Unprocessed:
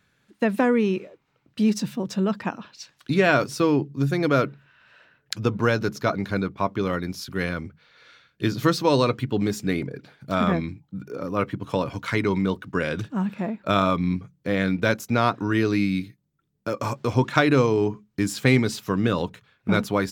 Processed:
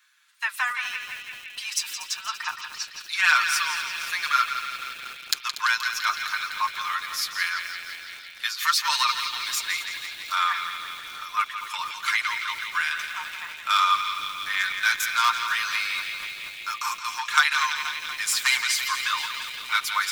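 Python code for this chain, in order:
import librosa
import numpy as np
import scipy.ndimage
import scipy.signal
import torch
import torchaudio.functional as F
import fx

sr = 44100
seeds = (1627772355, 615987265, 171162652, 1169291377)

p1 = np.clip(x, -10.0 ** (-10.5 / 20.0), 10.0 ** (-10.5 / 20.0))
p2 = scipy.signal.sosfilt(scipy.signal.butter(8, 1000.0, 'highpass', fs=sr, output='sos'), p1)
p3 = fx.high_shelf(p2, sr, hz=3600.0, db=6.5)
p4 = p3 + 0.66 * np.pad(p3, (int(6.6 * sr / 1000.0), 0))[:len(p3)]
p5 = p4 + fx.echo_banded(p4, sr, ms=169, feedback_pct=84, hz=3000.0, wet_db=-6.5, dry=0)
p6 = fx.echo_crushed(p5, sr, ms=238, feedback_pct=80, bits=6, wet_db=-13.0)
y = p6 * 10.0 ** (2.0 / 20.0)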